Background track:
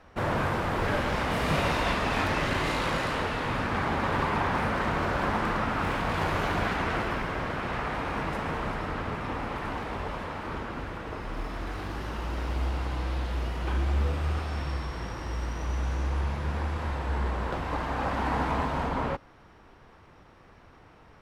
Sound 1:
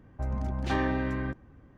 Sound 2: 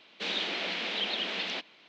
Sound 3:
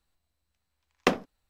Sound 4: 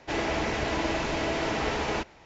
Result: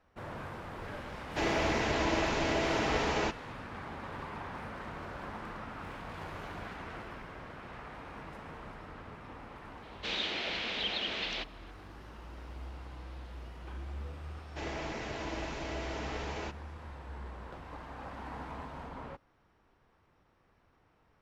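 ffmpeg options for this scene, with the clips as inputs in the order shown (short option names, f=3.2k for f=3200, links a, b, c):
-filter_complex "[4:a]asplit=2[a][b];[0:a]volume=-15dB[c];[a]atrim=end=2.25,asetpts=PTS-STARTPTS,volume=-2dB,afade=t=in:d=0.004:c=hsin,afade=t=out:st=2.246:d=0.004:c=hsin,adelay=1280[d];[2:a]atrim=end=1.88,asetpts=PTS-STARTPTS,volume=-2.5dB,afade=t=in:d=0.004:c=hsin,afade=t=out:st=1.876:d=0.004:c=hsin,adelay=9830[e];[b]atrim=end=2.25,asetpts=PTS-STARTPTS,volume=-10.5dB,afade=t=in:d=0.004:c=hsin,afade=t=out:st=2.246:d=0.004:c=hsin,adelay=14480[f];[c][d][e][f]amix=inputs=4:normalize=0"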